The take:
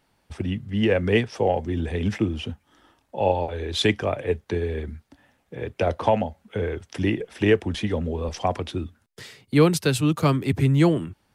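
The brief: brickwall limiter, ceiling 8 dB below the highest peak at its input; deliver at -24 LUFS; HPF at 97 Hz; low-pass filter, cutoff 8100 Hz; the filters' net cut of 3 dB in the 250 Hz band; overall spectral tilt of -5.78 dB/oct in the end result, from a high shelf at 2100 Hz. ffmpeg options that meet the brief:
-af "highpass=97,lowpass=8.1k,equalizer=f=250:t=o:g=-4,highshelf=f=2.1k:g=-5,volume=4.5dB,alimiter=limit=-10.5dB:level=0:latency=1"

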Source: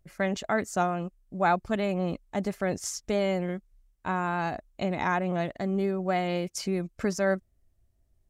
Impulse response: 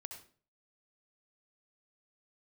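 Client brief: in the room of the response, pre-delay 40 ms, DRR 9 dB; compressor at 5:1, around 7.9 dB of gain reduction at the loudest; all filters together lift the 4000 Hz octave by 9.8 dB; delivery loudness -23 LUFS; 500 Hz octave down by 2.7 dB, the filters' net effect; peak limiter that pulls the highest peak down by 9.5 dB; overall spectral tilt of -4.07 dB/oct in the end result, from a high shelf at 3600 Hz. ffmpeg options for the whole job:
-filter_complex "[0:a]equalizer=f=500:t=o:g=-4,highshelf=f=3.6k:g=6,equalizer=f=4k:t=o:g=9,acompressor=threshold=-29dB:ratio=5,alimiter=level_in=2.5dB:limit=-24dB:level=0:latency=1,volume=-2.5dB,asplit=2[a][b];[1:a]atrim=start_sample=2205,adelay=40[c];[b][c]afir=irnorm=-1:irlink=0,volume=-5dB[d];[a][d]amix=inputs=2:normalize=0,volume=13dB"

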